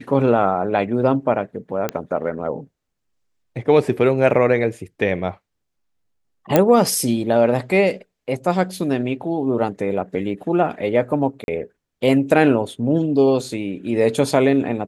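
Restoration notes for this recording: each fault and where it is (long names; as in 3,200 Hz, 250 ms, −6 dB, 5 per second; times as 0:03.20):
0:01.89: click −8 dBFS
0:06.56: click −1 dBFS
0:11.44–0:11.48: drop-out 41 ms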